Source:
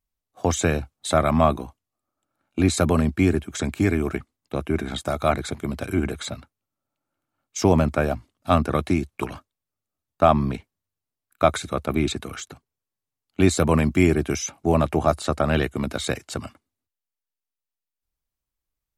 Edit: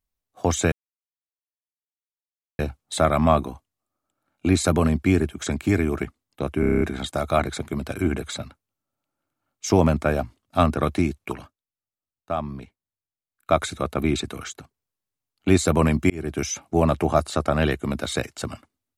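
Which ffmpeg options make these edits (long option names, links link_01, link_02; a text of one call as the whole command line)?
ffmpeg -i in.wav -filter_complex "[0:a]asplit=12[link_01][link_02][link_03][link_04][link_05][link_06][link_07][link_08][link_09][link_10][link_11][link_12];[link_01]atrim=end=0.72,asetpts=PTS-STARTPTS,afade=type=out:start_time=0.716:duration=0.004:curve=hsin,apad=pad_dur=1.87[link_13];[link_02]atrim=start=0.72:end=4.762,asetpts=PTS-STARTPTS,afade=type=in:duration=0.004:curve=hsin[link_14];[link_03]atrim=start=4.728:end=4.762[link_15];[link_04]atrim=start=4.728:end=4.762[link_16];[link_05]atrim=start=4.728:end=4.762[link_17];[link_06]atrim=start=4.728:end=4.762[link_18];[link_07]atrim=start=4.728:end=4.762[link_19];[link_08]atrim=start=4.728:end=4.762[link_20];[link_09]atrim=start=4.728:end=9.46,asetpts=PTS-STARTPTS,afade=type=out:start_time=4.382:duration=0.35:silence=0.298538[link_21];[link_10]atrim=start=9.46:end=11.19,asetpts=PTS-STARTPTS,volume=-10.5dB[link_22];[link_11]atrim=start=11.19:end=14.02,asetpts=PTS-STARTPTS,afade=type=in:duration=0.35:silence=0.298538,afade=type=out:start_time=2.826:duration=0.004:curve=hsin[link_23];[link_12]atrim=start=14.02,asetpts=PTS-STARTPTS,afade=type=in:duration=0.35[link_24];[link_13][link_14]concat=n=2:v=0:a=1[link_25];[link_25][link_15]acrossfade=duration=0.004:curve1=hsin:curve2=hsin[link_26];[link_26][link_16]acrossfade=duration=0.004:curve1=hsin:curve2=hsin[link_27];[link_27][link_17]acrossfade=duration=0.004:curve1=hsin:curve2=hsin[link_28];[link_28][link_18]acrossfade=duration=0.004:curve1=hsin:curve2=hsin[link_29];[link_29][link_19]acrossfade=duration=0.004:curve1=hsin:curve2=hsin[link_30];[link_30][link_20]acrossfade=duration=0.004:curve1=hsin:curve2=hsin[link_31];[link_21][link_22][link_23][link_24]concat=n=4:v=0:a=1[link_32];[link_31][link_32]acrossfade=duration=0.004:curve1=hsin:curve2=hsin" out.wav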